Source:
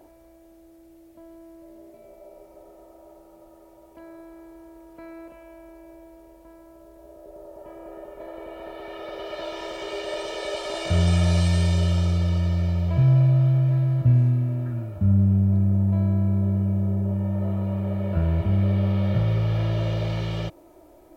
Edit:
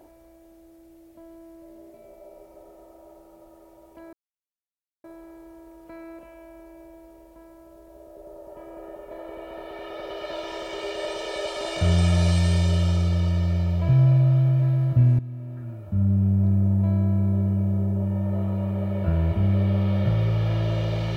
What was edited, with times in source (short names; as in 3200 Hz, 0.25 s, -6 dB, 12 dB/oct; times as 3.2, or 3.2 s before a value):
4.13 insert silence 0.91 s
14.28–15.57 fade in, from -15 dB